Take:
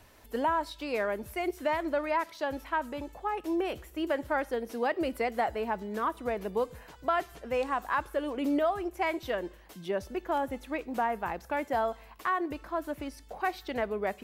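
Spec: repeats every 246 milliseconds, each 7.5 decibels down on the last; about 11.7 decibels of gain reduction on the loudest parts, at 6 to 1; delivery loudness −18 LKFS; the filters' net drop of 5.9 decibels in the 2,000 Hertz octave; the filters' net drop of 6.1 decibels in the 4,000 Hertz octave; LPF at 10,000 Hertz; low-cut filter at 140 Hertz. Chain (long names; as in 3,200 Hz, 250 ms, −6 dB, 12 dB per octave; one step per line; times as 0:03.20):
high-pass filter 140 Hz
low-pass filter 10,000 Hz
parametric band 2,000 Hz −6.5 dB
parametric band 4,000 Hz −5.5 dB
downward compressor 6 to 1, threshold −38 dBFS
repeating echo 246 ms, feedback 42%, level −7.5 dB
level +23.5 dB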